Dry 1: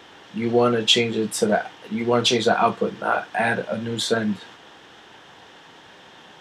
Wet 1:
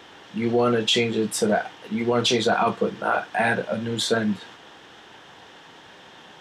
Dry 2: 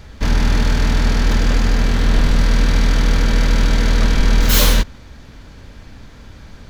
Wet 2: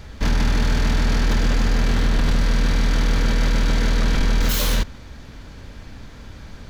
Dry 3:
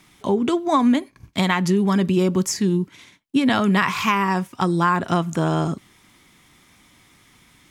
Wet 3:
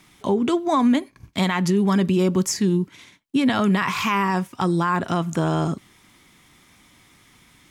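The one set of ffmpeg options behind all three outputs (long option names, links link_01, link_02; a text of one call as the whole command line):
ffmpeg -i in.wav -af "alimiter=limit=-11.5dB:level=0:latency=1:release=10" out.wav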